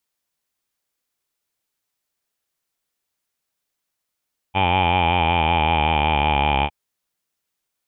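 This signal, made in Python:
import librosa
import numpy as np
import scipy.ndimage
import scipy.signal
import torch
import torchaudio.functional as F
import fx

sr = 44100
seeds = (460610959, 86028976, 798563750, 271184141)

y = fx.formant_vowel(sr, seeds[0], length_s=2.16, hz=93.1, glide_st=-5.0, vibrato_hz=5.3, vibrato_st=0.9, f1_hz=840.0, f2_hz=2400.0, f3_hz=3100.0)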